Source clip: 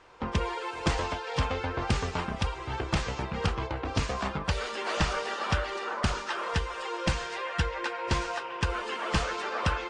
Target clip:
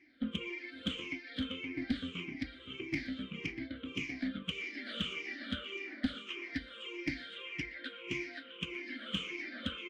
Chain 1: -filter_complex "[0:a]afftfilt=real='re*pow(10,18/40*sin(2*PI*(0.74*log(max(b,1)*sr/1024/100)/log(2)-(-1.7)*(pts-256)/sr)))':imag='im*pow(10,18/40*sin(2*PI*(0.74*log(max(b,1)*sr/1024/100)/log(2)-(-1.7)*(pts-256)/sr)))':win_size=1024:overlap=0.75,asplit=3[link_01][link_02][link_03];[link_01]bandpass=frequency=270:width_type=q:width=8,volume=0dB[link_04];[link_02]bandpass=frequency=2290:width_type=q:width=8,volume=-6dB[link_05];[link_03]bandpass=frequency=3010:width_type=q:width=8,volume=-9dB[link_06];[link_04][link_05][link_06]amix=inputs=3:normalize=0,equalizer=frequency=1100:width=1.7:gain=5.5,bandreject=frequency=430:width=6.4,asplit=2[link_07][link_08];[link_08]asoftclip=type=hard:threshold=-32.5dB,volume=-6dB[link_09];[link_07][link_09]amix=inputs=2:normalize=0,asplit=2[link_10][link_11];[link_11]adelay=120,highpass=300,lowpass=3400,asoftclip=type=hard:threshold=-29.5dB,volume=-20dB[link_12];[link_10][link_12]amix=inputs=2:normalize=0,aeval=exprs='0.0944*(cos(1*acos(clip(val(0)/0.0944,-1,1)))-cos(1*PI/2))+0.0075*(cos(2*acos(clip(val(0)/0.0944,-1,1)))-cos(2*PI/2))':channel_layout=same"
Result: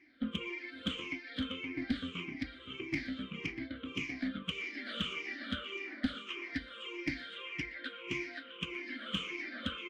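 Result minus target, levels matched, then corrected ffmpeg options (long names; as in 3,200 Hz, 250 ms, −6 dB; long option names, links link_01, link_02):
1,000 Hz band +3.5 dB
-filter_complex "[0:a]afftfilt=real='re*pow(10,18/40*sin(2*PI*(0.74*log(max(b,1)*sr/1024/100)/log(2)-(-1.7)*(pts-256)/sr)))':imag='im*pow(10,18/40*sin(2*PI*(0.74*log(max(b,1)*sr/1024/100)/log(2)-(-1.7)*(pts-256)/sr)))':win_size=1024:overlap=0.75,asplit=3[link_01][link_02][link_03];[link_01]bandpass=frequency=270:width_type=q:width=8,volume=0dB[link_04];[link_02]bandpass=frequency=2290:width_type=q:width=8,volume=-6dB[link_05];[link_03]bandpass=frequency=3010:width_type=q:width=8,volume=-9dB[link_06];[link_04][link_05][link_06]amix=inputs=3:normalize=0,bandreject=frequency=430:width=6.4,asplit=2[link_07][link_08];[link_08]asoftclip=type=hard:threshold=-32.5dB,volume=-6dB[link_09];[link_07][link_09]amix=inputs=2:normalize=0,asplit=2[link_10][link_11];[link_11]adelay=120,highpass=300,lowpass=3400,asoftclip=type=hard:threshold=-29.5dB,volume=-20dB[link_12];[link_10][link_12]amix=inputs=2:normalize=0,aeval=exprs='0.0944*(cos(1*acos(clip(val(0)/0.0944,-1,1)))-cos(1*PI/2))+0.0075*(cos(2*acos(clip(val(0)/0.0944,-1,1)))-cos(2*PI/2))':channel_layout=same"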